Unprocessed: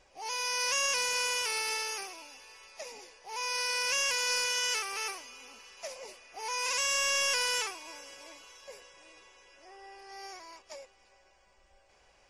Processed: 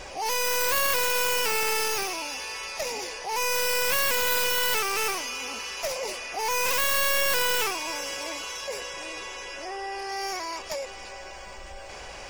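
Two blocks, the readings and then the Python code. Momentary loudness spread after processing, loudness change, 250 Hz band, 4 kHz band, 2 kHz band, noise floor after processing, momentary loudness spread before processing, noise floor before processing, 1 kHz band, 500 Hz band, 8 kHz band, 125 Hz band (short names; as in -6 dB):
14 LU, +3.5 dB, +15.5 dB, +3.5 dB, +6.0 dB, -41 dBFS, 21 LU, -65 dBFS, +8.5 dB, +11.5 dB, +3.5 dB, n/a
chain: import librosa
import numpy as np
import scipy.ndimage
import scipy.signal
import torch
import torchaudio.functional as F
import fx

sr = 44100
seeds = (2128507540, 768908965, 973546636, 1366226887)

y = fx.tracing_dist(x, sr, depth_ms=0.21)
y = fx.env_flatten(y, sr, amount_pct=50)
y = y * 10.0 ** (5.5 / 20.0)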